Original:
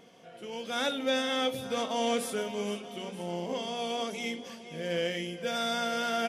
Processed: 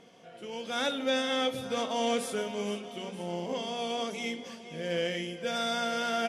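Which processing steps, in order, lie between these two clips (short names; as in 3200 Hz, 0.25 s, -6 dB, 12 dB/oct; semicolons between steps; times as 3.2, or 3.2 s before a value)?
LPF 11000 Hz 12 dB/oct; reverb RT60 0.55 s, pre-delay 0.117 s, DRR 19.5 dB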